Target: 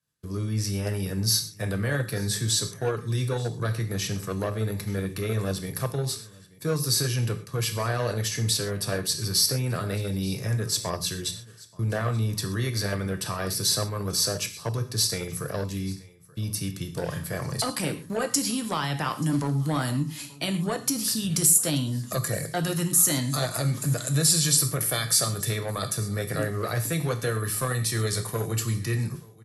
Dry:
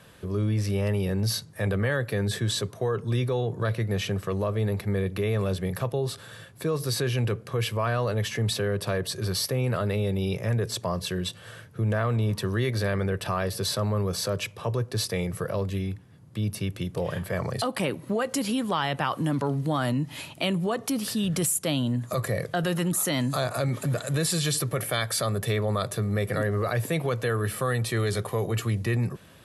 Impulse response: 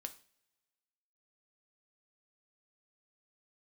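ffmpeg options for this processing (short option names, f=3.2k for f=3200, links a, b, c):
-filter_complex "[0:a]agate=range=-33dB:threshold=-34dB:ratio=3:detection=peak,highshelf=f=4k:t=q:w=1.5:g=7.5,aecho=1:1:881:0.0841[a];[1:a]atrim=start_sample=2205,atrim=end_sample=3528,asetrate=25137,aresample=44100[b];[a][b]afir=irnorm=-1:irlink=0,acrossover=split=430|800[c][d][e];[d]acrusher=bits=4:mix=0:aa=0.5[f];[c][f][e]amix=inputs=3:normalize=0"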